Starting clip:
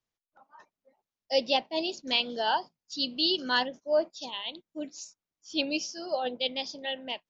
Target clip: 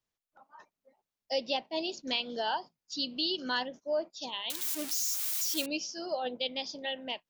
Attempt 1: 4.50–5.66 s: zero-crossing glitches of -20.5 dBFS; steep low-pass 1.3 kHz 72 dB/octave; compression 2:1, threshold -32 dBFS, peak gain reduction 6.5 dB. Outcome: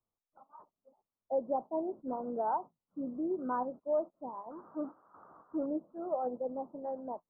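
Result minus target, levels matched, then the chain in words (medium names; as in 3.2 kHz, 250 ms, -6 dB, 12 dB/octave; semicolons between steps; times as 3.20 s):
1 kHz band +5.5 dB
4.50–5.66 s: zero-crossing glitches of -20.5 dBFS; compression 2:1, threshold -32 dBFS, peak gain reduction 7 dB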